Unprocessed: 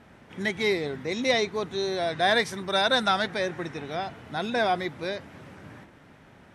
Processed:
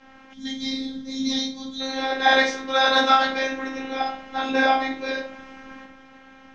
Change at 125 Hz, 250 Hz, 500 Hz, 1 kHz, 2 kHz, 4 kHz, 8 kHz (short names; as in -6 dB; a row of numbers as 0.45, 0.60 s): under -10 dB, +5.0 dB, 0.0 dB, +6.5 dB, +5.0 dB, +4.0 dB, +3.0 dB